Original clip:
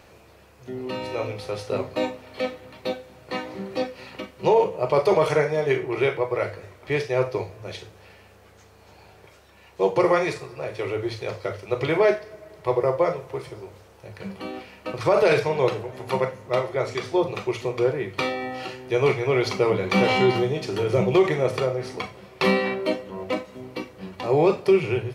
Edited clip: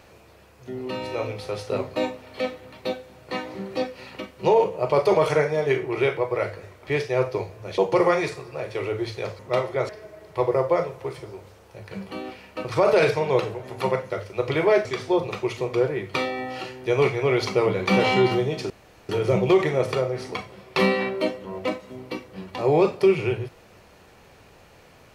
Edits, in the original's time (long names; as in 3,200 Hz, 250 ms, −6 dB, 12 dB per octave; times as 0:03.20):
0:07.78–0:09.82: remove
0:11.43–0:12.18: swap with 0:16.39–0:16.89
0:20.74: splice in room tone 0.39 s